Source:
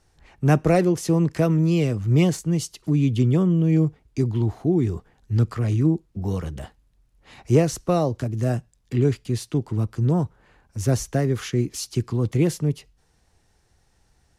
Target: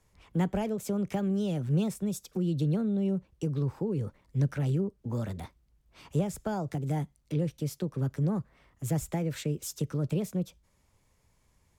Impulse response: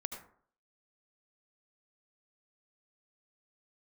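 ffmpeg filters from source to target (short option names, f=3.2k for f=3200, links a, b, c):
-filter_complex "[0:a]acrossover=split=140[a][b];[b]acompressor=threshold=-27dB:ratio=3[c];[a][c]amix=inputs=2:normalize=0,asetrate=53802,aresample=44100,volume=-5.5dB"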